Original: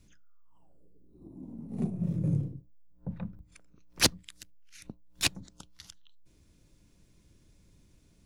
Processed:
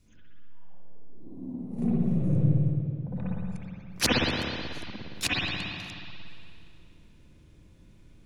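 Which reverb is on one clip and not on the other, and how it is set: spring tank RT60 2.4 s, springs 55/59 ms, chirp 65 ms, DRR -9 dB; gain -2.5 dB

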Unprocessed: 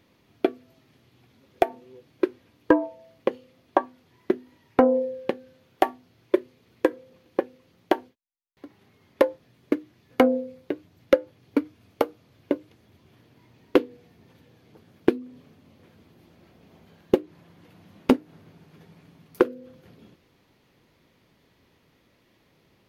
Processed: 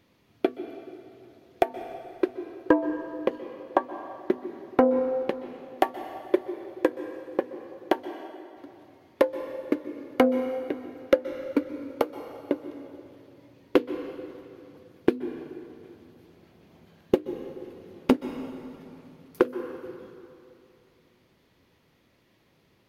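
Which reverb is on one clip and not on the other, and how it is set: plate-style reverb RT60 2.7 s, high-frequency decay 0.75×, pre-delay 0.115 s, DRR 10 dB; gain -2 dB

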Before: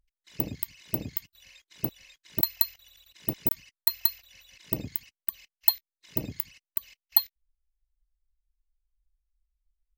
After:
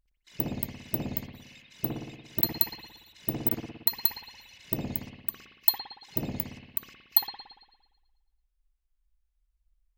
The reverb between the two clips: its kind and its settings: spring tank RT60 1.1 s, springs 57 ms, chirp 55 ms, DRR -1.5 dB; gain -1 dB

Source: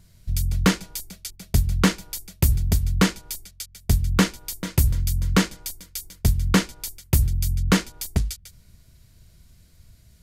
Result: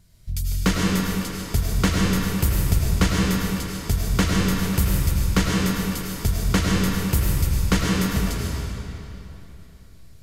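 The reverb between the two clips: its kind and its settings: digital reverb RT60 3.3 s, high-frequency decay 0.8×, pre-delay 60 ms, DRR -4 dB; gain -3 dB

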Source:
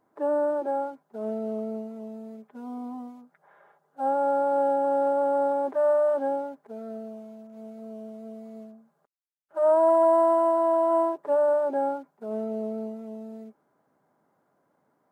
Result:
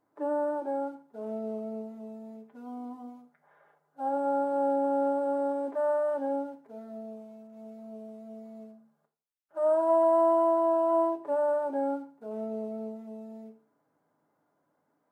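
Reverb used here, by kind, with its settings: FDN reverb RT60 0.44 s, low-frequency decay 1×, high-frequency decay 1×, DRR 5 dB; gain -6 dB

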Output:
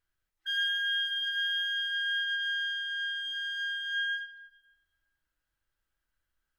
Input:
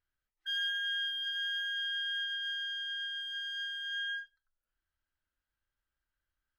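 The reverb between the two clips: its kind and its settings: shoebox room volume 1900 m³, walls mixed, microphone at 0.68 m; gain +3.5 dB

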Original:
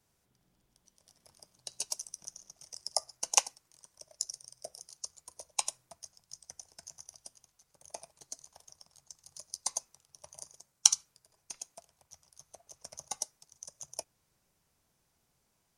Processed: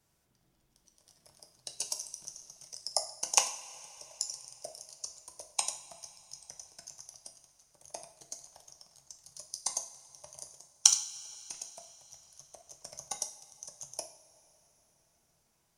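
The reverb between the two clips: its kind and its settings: two-slope reverb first 0.5 s, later 4.1 s, from -18 dB, DRR 5.5 dB

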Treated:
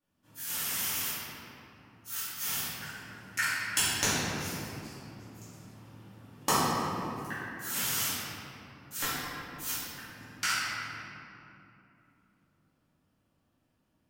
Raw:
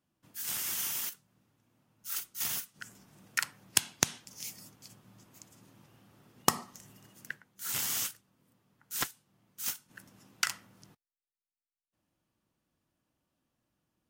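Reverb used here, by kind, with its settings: shoebox room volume 130 m³, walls hard, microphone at 2.3 m; gain -9 dB

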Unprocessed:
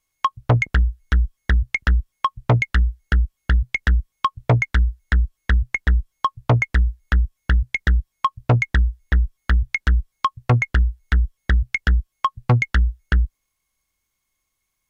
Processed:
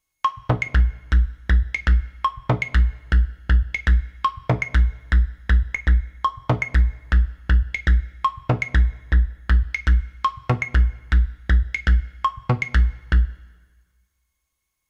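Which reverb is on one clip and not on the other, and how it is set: two-slope reverb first 0.21 s, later 1.5 s, from -19 dB, DRR 7 dB; gain -2.5 dB

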